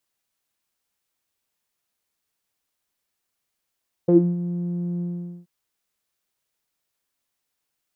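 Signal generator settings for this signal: synth note saw F3 12 dB/octave, low-pass 240 Hz, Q 9.4, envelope 1 oct, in 0.17 s, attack 10 ms, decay 0.27 s, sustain -11 dB, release 0.45 s, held 0.93 s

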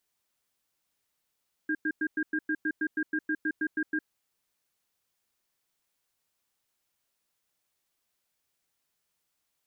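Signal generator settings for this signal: cadence 309 Hz, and 1.61 kHz, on 0.06 s, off 0.10 s, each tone -28.5 dBFS 2.34 s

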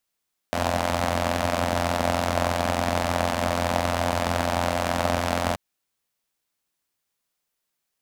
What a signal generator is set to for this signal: four-cylinder engine model, steady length 5.03 s, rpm 2600, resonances 92/220/620 Hz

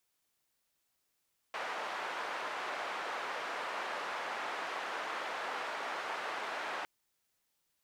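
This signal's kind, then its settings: noise band 610–1400 Hz, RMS -39 dBFS 5.31 s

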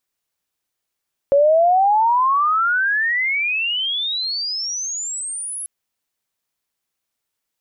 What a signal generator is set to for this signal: sweep logarithmic 550 Hz -> 11 kHz -10 dBFS -> -25.5 dBFS 4.34 s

